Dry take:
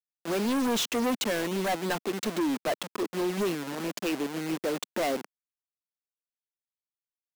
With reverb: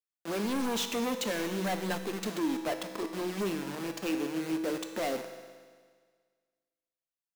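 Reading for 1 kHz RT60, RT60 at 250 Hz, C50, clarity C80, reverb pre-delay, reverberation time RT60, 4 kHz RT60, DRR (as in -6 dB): 1.7 s, 1.7 s, 7.5 dB, 8.5 dB, 6 ms, 1.7 s, 1.7 s, 5.5 dB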